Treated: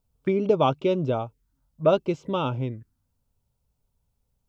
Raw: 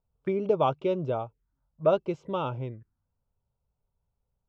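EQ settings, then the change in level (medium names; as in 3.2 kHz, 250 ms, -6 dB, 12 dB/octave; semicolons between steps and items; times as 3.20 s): peaking EQ 260 Hz +6 dB 0.43 oct; bass shelf 390 Hz +6 dB; treble shelf 2.1 kHz +11 dB; 0.0 dB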